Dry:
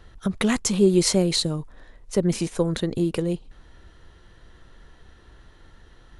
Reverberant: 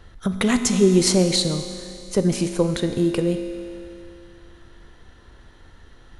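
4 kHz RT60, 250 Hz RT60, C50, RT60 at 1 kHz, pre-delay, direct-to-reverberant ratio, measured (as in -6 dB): 2.7 s, 2.7 s, 8.0 dB, 2.7 s, 4 ms, 6.5 dB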